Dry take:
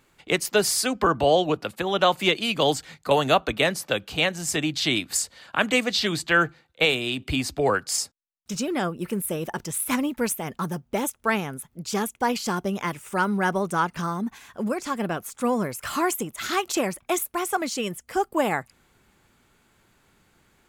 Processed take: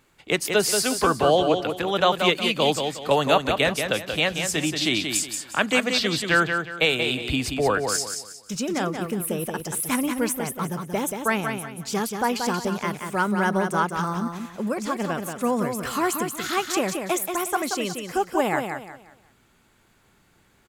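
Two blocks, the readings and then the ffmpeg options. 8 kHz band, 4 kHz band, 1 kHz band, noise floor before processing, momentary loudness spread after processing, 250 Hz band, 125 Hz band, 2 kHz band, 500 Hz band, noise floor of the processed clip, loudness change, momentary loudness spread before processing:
+1.0 dB, +1.0 dB, +1.0 dB, −66 dBFS, 8 LU, +1.0 dB, +1.0 dB, +1.0 dB, +1.0 dB, −61 dBFS, +1.0 dB, 8 LU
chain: -af "aecho=1:1:181|362|543|724:0.501|0.155|0.0482|0.0149"

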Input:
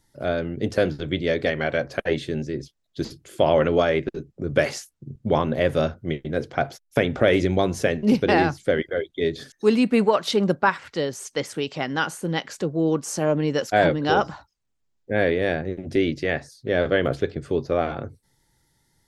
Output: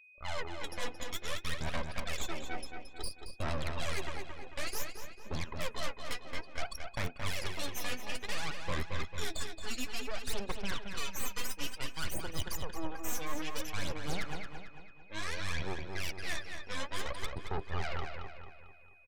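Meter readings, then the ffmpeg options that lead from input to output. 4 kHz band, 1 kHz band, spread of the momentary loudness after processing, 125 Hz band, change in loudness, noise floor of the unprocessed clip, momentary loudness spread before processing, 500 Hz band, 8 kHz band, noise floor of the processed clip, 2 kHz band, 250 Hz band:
−7.5 dB, −15.5 dB, 6 LU, −14.0 dB, −16.0 dB, −71 dBFS, 10 LU, −22.5 dB, −4.0 dB, −52 dBFS, −12.5 dB, −21.5 dB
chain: -filter_complex "[0:a]highpass=310,afftdn=noise_reduction=36:noise_floor=-35,aderivative,areverse,acompressor=threshold=-50dB:ratio=6,areverse,aeval=exprs='0.0126*(cos(1*acos(clip(val(0)/0.0126,-1,1)))-cos(1*PI/2))+0.00224*(cos(2*acos(clip(val(0)/0.0126,-1,1)))-cos(2*PI/2))+0.000891*(cos(3*acos(clip(val(0)/0.0126,-1,1)))-cos(3*PI/2))+0.00501*(cos(6*acos(clip(val(0)/0.0126,-1,1)))-cos(6*PI/2))+0.000158*(cos(8*acos(clip(val(0)/0.0126,-1,1)))-cos(8*PI/2))':channel_layout=same,aphaser=in_gain=1:out_gain=1:delay=4.1:decay=0.69:speed=0.57:type=sinusoidal,asoftclip=type=tanh:threshold=-35.5dB,aeval=exprs='val(0)+0.000447*sin(2*PI*2500*n/s)':channel_layout=same,asplit=2[link_01][link_02];[link_02]adelay=223,lowpass=frequency=4500:poles=1,volume=-5.5dB,asplit=2[link_03][link_04];[link_04]adelay=223,lowpass=frequency=4500:poles=1,volume=0.48,asplit=2[link_05][link_06];[link_06]adelay=223,lowpass=frequency=4500:poles=1,volume=0.48,asplit=2[link_07][link_08];[link_08]adelay=223,lowpass=frequency=4500:poles=1,volume=0.48,asplit=2[link_09][link_10];[link_10]adelay=223,lowpass=frequency=4500:poles=1,volume=0.48,asplit=2[link_11][link_12];[link_12]adelay=223,lowpass=frequency=4500:poles=1,volume=0.48[link_13];[link_03][link_05][link_07][link_09][link_11][link_13]amix=inputs=6:normalize=0[link_14];[link_01][link_14]amix=inputs=2:normalize=0,volume=10.5dB"

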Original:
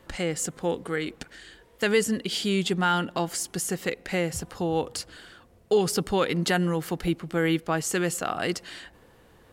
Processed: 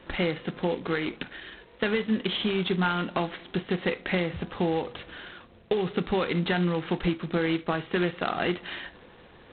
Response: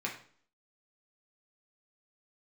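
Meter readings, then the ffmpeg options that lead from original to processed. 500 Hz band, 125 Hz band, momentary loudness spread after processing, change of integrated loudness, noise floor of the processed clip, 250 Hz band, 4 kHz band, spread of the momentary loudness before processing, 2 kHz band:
−1.5 dB, −0.5 dB, 13 LU, −1.5 dB, −53 dBFS, 0.0 dB, −1.5 dB, 11 LU, −0.5 dB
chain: -filter_complex "[0:a]acompressor=threshold=-27dB:ratio=12,asplit=2[link_01][link_02];[1:a]atrim=start_sample=2205,atrim=end_sample=3528[link_03];[link_02][link_03]afir=irnorm=-1:irlink=0,volume=-9dB[link_04];[link_01][link_04]amix=inputs=2:normalize=0,volume=2dB" -ar 8000 -c:a adpcm_g726 -b:a 16k

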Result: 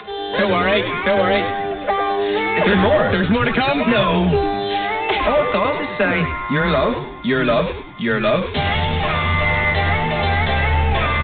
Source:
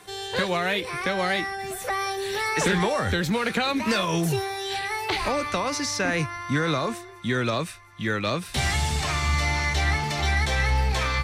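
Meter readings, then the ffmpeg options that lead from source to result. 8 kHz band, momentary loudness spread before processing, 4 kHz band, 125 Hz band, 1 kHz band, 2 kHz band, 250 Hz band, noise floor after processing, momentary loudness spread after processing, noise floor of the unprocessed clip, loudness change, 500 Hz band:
below −40 dB, 6 LU, +4.5 dB, +5.5 dB, +8.5 dB, +6.5 dB, +8.0 dB, −28 dBFS, 5 LU, −42 dBFS, +7.5 dB, +10.5 dB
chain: -filter_complex "[0:a]equalizer=frequency=600:width=2.7:gain=6,aecho=1:1:4.9:0.61,afreqshift=13,aresample=16000,asoftclip=type=hard:threshold=-16.5dB,aresample=44100,acompressor=mode=upward:threshold=-35dB:ratio=2.5,asplit=2[link_01][link_02];[link_02]asplit=5[link_03][link_04][link_05][link_06][link_07];[link_03]adelay=101,afreqshift=-100,volume=-8.5dB[link_08];[link_04]adelay=202,afreqshift=-200,volume=-15.8dB[link_09];[link_05]adelay=303,afreqshift=-300,volume=-23.2dB[link_10];[link_06]adelay=404,afreqshift=-400,volume=-30.5dB[link_11];[link_07]adelay=505,afreqshift=-500,volume=-37.8dB[link_12];[link_08][link_09][link_10][link_11][link_12]amix=inputs=5:normalize=0[link_13];[link_01][link_13]amix=inputs=2:normalize=0,aresample=8000,aresample=44100,volume=5.5dB"

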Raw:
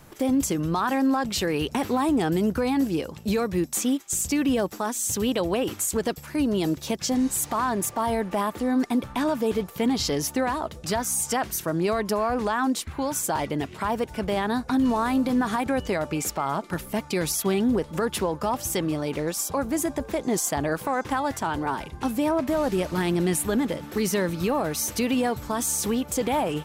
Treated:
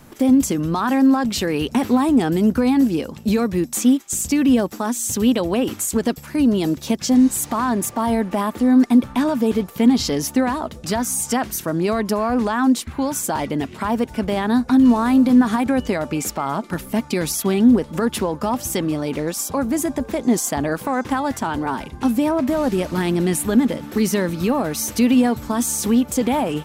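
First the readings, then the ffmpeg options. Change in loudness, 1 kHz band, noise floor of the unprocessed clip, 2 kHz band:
+6.0 dB, +3.0 dB, −43 dBFS, +3.0 dB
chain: -af "equalizer=frequency=240:width_type=o:width=0.4:gain=8.5,volume=3dB"

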